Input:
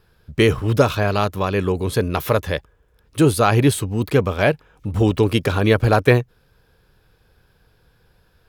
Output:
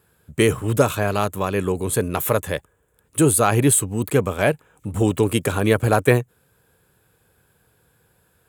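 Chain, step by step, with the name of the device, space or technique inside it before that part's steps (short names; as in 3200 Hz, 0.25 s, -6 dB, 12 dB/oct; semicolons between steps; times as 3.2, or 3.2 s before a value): budget condenser microphone (HPF 93 Hz; resonant high shelf 6400 Hz +7.5 dB, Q 3); gain -1.5 dB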